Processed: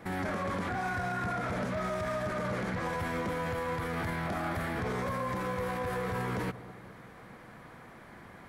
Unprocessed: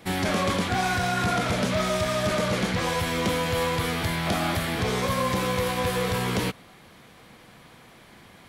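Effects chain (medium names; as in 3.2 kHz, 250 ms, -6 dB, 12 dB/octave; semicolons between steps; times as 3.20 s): resonant high shelf 2.3 kHz -8.5 dB, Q 1.5; peak limiter -26 dBFS, peak gain reduction 11.5 dB; on a send: bucket-brigade echo 202 ms, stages 1024, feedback 56%, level -14.5 dB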